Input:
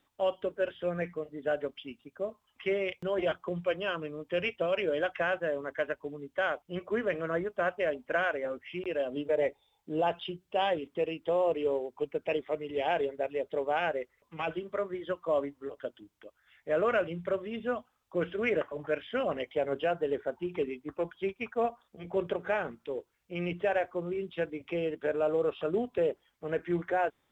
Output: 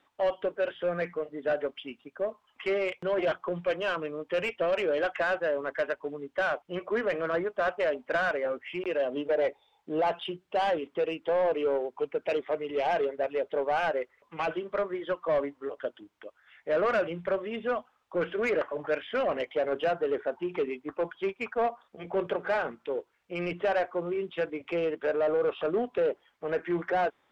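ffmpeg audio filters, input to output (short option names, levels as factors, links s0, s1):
-filter_complex "[0:a]asplit=2[s0][s1];[s1]highpass=f=720:p=1,volume=7.08,asoftclip=type=tanh:threshold=0.158[s2];[s0][s2]amix=inputs=2:normalize=0,lowpass=f=1600:p=1,volume=0.501,volume=0.841"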